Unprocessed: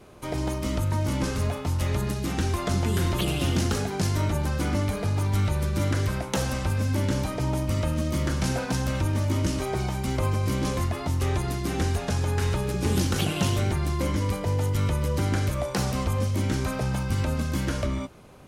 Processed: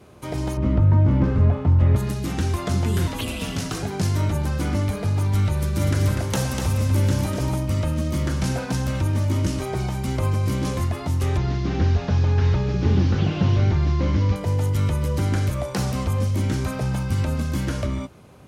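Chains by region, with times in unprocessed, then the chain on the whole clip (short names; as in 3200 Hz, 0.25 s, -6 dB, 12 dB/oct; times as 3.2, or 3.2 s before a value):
0.57–1.96 switching spikes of -30 dBFS + LPF 1800 Hz + low shelf 420 Hz +7 dB
3.07–3.83 low shelf 250 Hz -6 dB + frequency shift -87 Hz
5.57–7.56 high shelf 6300 Hz +5 dB + echo 0.246 s -5.5 dB
11.37–14.36 delta modulation 32 kbps, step -40 dBFS + low shelf 150 Hz +5 dB
whole clip: HPF 77 Hz; low shelf 130 Hz +8.5 dB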